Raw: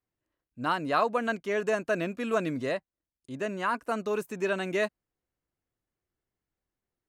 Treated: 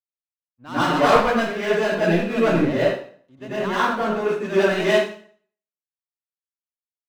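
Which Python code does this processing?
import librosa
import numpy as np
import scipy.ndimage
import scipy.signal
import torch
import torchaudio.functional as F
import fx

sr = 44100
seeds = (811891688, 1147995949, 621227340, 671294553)

y = scipy.signal.sosfilt(scipy.signal.butter(2, 4900.0, 'lowpass', fs=sr, output='sos'), x)
y = fx.leveller(y, sr, passes=3)
y = fx.rev_plate(y, sr, seeds[0], rt60_s=0.76, hf_ratio=0.9, predelay_ms=80, drr_db=-10.0)
y = fx.band_widen(y, sr, depth_pct=100)
y = F.gain(torch.from_numpy(y), -8.5).numpy()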